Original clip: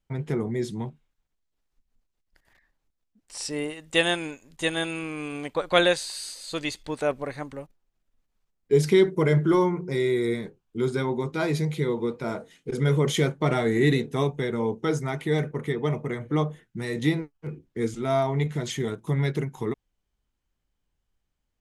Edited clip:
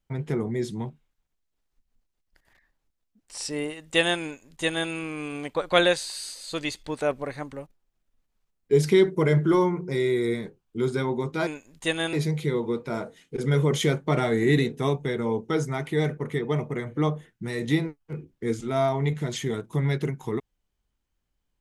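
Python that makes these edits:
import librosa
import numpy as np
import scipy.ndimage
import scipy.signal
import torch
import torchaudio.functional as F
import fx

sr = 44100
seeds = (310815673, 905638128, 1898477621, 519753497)

y = fx.edit(x, sr, fx.duplicate(start_s=4.24, length_s=0.66, to_s=11.47), tone=tone)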